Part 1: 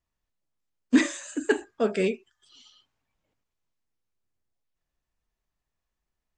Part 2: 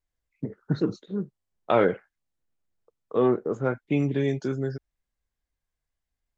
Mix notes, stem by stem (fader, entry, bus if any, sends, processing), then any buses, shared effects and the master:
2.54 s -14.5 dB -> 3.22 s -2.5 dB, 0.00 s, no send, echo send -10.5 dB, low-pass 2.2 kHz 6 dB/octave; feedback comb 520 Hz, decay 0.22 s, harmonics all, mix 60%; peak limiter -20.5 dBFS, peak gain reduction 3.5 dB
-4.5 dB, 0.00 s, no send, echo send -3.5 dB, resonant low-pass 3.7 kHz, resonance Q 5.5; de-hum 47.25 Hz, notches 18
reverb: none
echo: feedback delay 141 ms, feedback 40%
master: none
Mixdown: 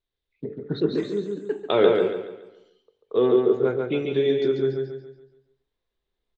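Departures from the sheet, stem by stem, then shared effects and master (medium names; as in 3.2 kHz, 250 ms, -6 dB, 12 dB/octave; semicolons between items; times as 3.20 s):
stem 1 -14.5 dB -> -5.5 dB; master: extra peaking EQ 410 Hz +12.5 dB 0.57 oct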